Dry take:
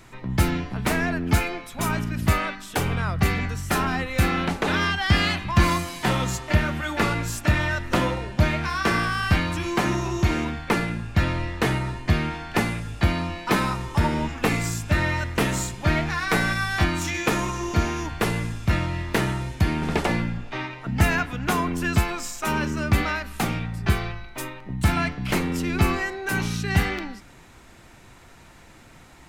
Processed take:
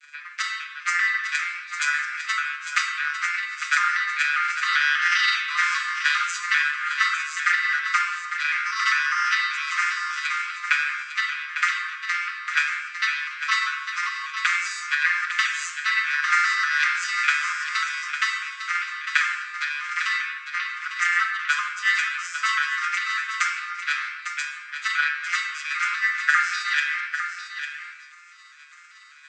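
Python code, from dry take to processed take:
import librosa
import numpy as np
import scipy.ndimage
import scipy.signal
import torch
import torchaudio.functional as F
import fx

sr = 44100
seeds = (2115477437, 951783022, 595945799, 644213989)

p1 = fx.vocoder_arp(x, sr, chord='minor triad', root=50, every_ms=198)
p2 = fx.peak_eq(p1, sr, hz=2000.0, db=5.0, octaves=1.6)
p3 = fx.transient(p2, sr, attack_db=8, sustain_db=-7)
p4 = fx.tilt_eq(p3, sr, slope=2.0)
p5 = fx.over_compress(p4, sr, threshold_db=-24.0, ratio=-1.0)
p6 = p4 + (p5 * 10.0 ** (-2.0 / 20.0))
p7 = scipy.signal.sosfilt(scipy.signal.butter(16, 1200.0, 'highpass', fs=sr, output='sos'), p6)
p8 = p7 + 0.84 * np.pad(p7, (int(5.6 * sr / 1000.0), 0))[:len(p7)]
p9 = p8 + fx.echo_single(p8, sr, ms=852, db=-9.0, dry=0)
y = fx.room_shoebox(p9, sr, seeds[0], volume_m3=1300.0, walls='mixed', distance_m=1.4)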